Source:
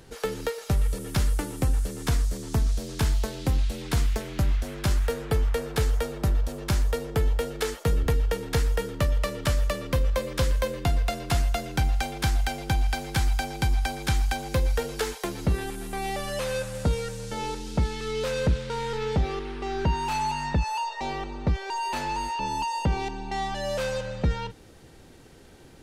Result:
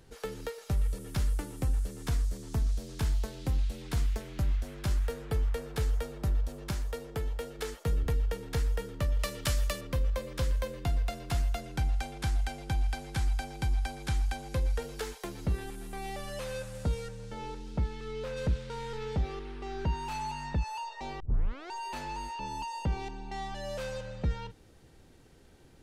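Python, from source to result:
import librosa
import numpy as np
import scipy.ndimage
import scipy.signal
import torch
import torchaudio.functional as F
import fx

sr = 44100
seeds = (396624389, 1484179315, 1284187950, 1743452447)

y = fx.low_shelf(x, sr, hz=170.0, db=-6.0, at=(6.71, 7.59))
y = fx.high_shelf(y, sr, hz=2100.0, db=10.0, at=(9.19, 9.81))
y = fx.cheby1_lowpass(y, sr, hz=12000.0, order=5, at=(11.6, 14.82))
y = fx.high_shelf(y, sr, hz=fx.line((17.07, 5800.0), (18.36, 4000.0)), db=-11.0, at=(17.07, 18.36), fade=0.02)
y = fx.edit(y, sr, fx.tape_start(start_s=21.2, length_s=0.52), tone=tone)
y = fx.low_shelf(y, sr, hz=120.0, db=5.0)
y = y * 10.0 ** (-9.0 / 20.0)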